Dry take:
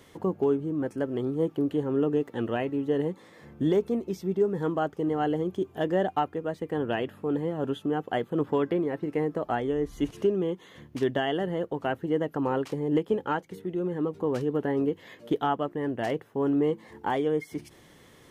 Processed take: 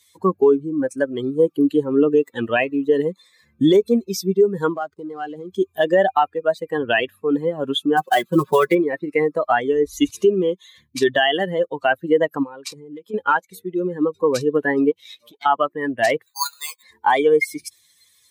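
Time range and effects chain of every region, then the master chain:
4.73–5.52 s: compression 10:1, threshold -29 dBFS + hysteresis with a dead band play -48.5 dBFS
7.97–8.75 s: dead-time distortion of 0.055 ms + comb 5.4 ms, depth 85%
12.43–13.14 s: self-modulated delay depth 0.051 ms + compression, threshold -33 dBFS
14.91–15.46 s: comb filter that takes the minimum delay 0.33 ms + high-pass 96 Hz + compression 5:1, threshold -40 dBFS
16.26–16.83 s: high-pass 890 Hz 24 dB/octave + doubling 12 ms -6 dB + careless resampling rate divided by 8×, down none, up hold
whole clip: expander on every frequency bin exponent 2; high-pass 1 kHz 6 dB/octave; loudness maximiser +31 dB; trim -6 dB

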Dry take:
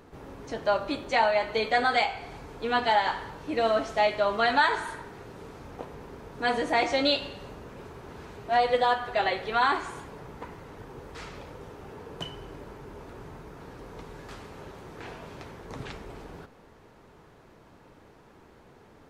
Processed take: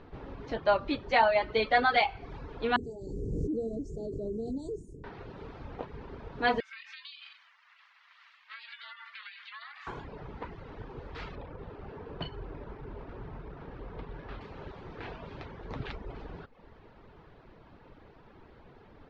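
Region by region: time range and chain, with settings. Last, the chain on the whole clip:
2.76–5.04 s: Chebyshev band-stop 430–7300 Hz, order 4 + treble shelf 2.6 kHz +12 dB + swell ahead of each attack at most 21 dB/s
6.60–9.87 s: steep high-pass 1.4 kHz 48 dB/octave + compression 16:1, threshold -38 dBFS + ring modulator 310 Hz
11.35–14.41 s: doubling 44 ms -14 dB + decimation joined by straight lines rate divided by 6×
whole clip: low-pass 4.3 kHz 24 dB/octave; bass shelf 61 Hz +10 dB; reverb removal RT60 0.62 s

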